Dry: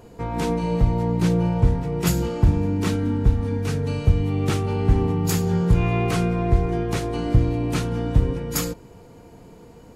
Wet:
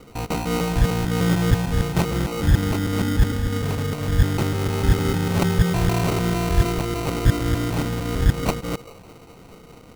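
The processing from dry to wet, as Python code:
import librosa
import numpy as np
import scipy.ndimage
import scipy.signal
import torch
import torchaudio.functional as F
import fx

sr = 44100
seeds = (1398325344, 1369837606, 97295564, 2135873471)

y = fx.local_reverse(x, sr, ms=151.0)
y = fx.high_shelf(y, sr, hz=5500.0, db=6.5)
y = fx.echo_stepped(y, sr, ms=208, hz=660.0, octaves=0.7, feedback_pct=70, wet_db=-9.5)
y = fx.sample_hold(y, sr, seeds[0], rate_hz=1700.0, jitter_pct=0)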